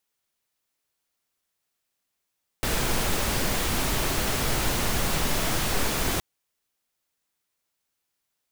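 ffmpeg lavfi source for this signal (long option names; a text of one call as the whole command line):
ffmpeg -f lavfi -i "anoisesrc=color=pink:amplitude=0.288:duration=3.57:sample_rate=44100:seed=1" out.wav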